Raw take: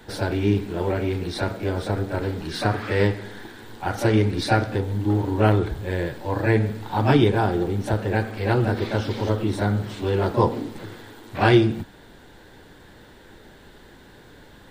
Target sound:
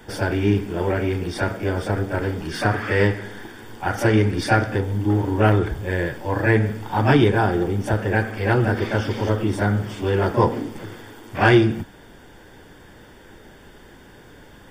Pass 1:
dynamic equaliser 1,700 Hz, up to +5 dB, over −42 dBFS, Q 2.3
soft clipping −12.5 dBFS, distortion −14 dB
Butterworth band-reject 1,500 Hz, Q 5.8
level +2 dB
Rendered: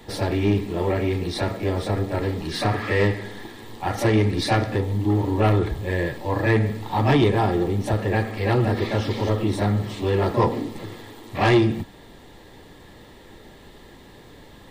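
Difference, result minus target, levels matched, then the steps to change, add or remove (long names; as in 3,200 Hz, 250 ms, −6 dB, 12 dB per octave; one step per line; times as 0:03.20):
soft clipping: distortion +11 dB; 2,000 Hz band −3.0 dB
change: soft clipping −4.5 dBFS, distortion −25 dB
change: Butterworth band-reject 4,000 Hz, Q 5.8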